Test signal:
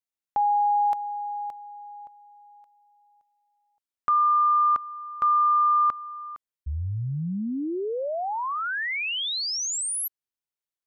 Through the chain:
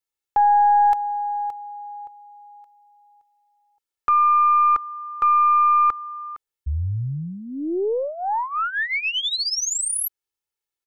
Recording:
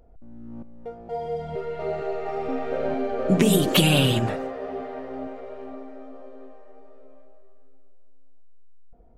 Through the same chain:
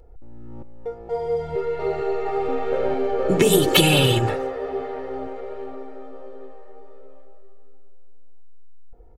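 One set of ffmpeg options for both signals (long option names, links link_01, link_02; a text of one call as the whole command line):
ffmpeg -i in.wav -af "aecho=1:1:2.3:0.66,aeval=exprs='0.668*(cos(1*acos(clip(val(0)/0.668,-1,1)))-cos(1*PI/2))+0.0376*(cos(4*acos(clip(val(0)/0.668,-1,1)))-cos(4*PI/2))':channel_layout=same,volume=2.5dB" out.wav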